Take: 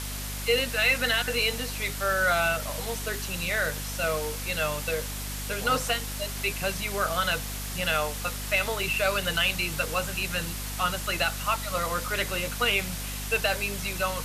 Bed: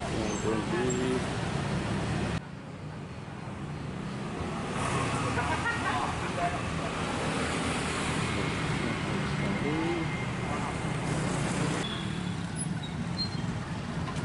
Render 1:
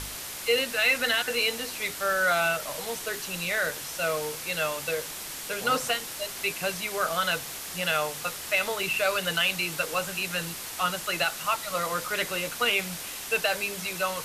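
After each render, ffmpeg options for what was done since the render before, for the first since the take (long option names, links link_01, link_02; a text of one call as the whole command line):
ffmpeg -i in.wav -af "bandreject=frequency=50:width_type=h:width=4,bandreject=frequency=100:width_type=h:width=4,bandreject=frequency=150:width_type=h:width=4,bandreject=frequency=200:width_type=h:width=4,bandreject=frequency=250:width_type=h:width=4" out.wav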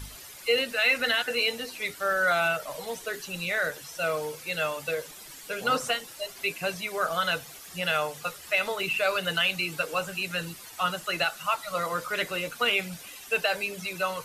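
ffmpeg -i in.wav -af "afftdn=noise_reduction=12:noise_floor=-38" out.wav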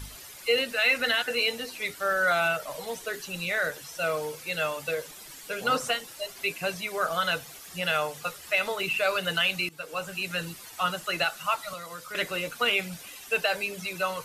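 ffmpeg -i in.wav -filter_complex "[0:a]asettb=1/sr,asplit=3[link_01][link_02][link_03];[link_01]atrim=end=11.734[link_04];[link_02]atrim=start=11.73:end=12.15,asetpts=PTS-STARTPTS,afade=type=in:duration=0.004:curve=qsin,afade=type=out:start_time=0.416:duration=0.004:curve=qsin,acrossover=split=240|2300[link_05][link_06][link_07];[link_05]acompressor=threshold=-53dB:ratio=4[link_08];[link_06]acompressor=threshold=-42dB:ratio=4[link_09];[link_07]acompressor=threshold=-44dB:ratio=4[link_10];[link_08][link_09][link_10]amix=inputs=3:normalize=0[link_11];[link_03]atrim=start=12.146[link_12];[link_04][link_11]acrossfade=duration=0.004:curve1=hsin:curve2=qsin[link_13];[link_13][link_12]acrossfade=duration=0.004:curve1=qsin:curve2=hsin,asplit=2[link_14][link_15];[link_14]atrim=end=9.69,asetpts=PTS-STARTPTS,afade=type=out:start_time=9.686:duration=0.004:curve=hsin:silence=0.125893[link_16];[link_15]atrim=start=9.69,asetpts=PTS-STARTPTS,afade=type=in:duration=0.72:curve=qsin:silence=0.125893[link_17];[link_16][link_17]concat=n=2:v=0:a=1" out.wav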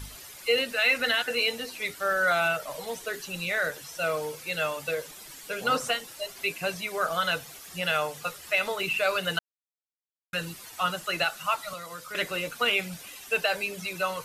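ffmpeg -i in.wav -filter_complex "[0:a]asplit=3[link_01][link_02][link_03];[link_01]atrim=end=9.39,asetpts=PTS-STARTPTS,afade=type=out:start_time=9.386:duration=0.004:curve=hsin[link_04];[link_02]atrim=start=9.39:end=10.33,asetpts=PTS-STARTPTS,volume=0[link_05];[link_03]atrim=start=10.33,asetpts=PTS-STARTPTS,afade=type=in:duration=0.004:curve=hsin[link_06];[link_04][link_05][link_06]concat=n=3:v=0:a=1" out.wav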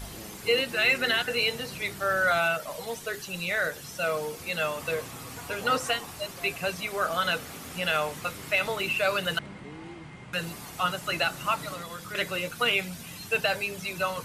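ffmpeg -i in.wav -i bed.wav -filter_complex "[1:a]volume=-13dB[link_01];[0:a][link_01]amix=inputs=2:normalize=0" out.wav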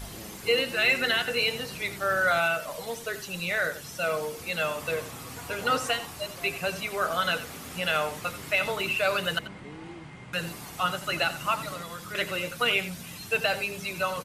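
ffmpeg -i in.wav -filter_complex "[0:a]asplit=2[link_01][link_02];[link_02]adelay=87.46,volume=-13dB,highshelf=frequency=4000:gain=-1.97[link_03];[link_01][link_03]amix=inputs=2:normalize=0" out.wav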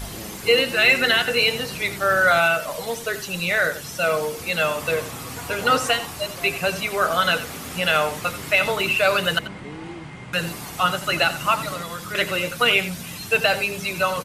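ffmpeg -i in.wav -af "volume=7dB" out.wav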